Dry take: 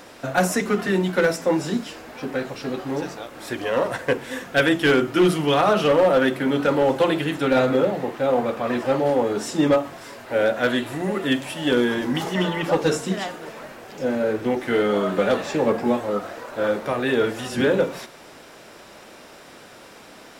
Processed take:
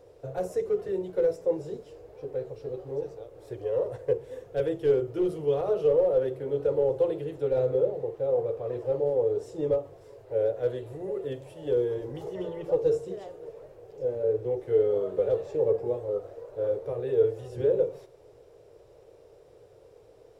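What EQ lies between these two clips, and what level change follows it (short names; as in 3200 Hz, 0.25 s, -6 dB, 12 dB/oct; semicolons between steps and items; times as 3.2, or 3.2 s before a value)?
EQ curve 120 Hz 0 dB, 230 Hz -27 dB, 450 Hz +3 dB, 670 Hz -12 dB, 1500 Hz -25 dB, 6600 Hz -21 dB; -2.0 dB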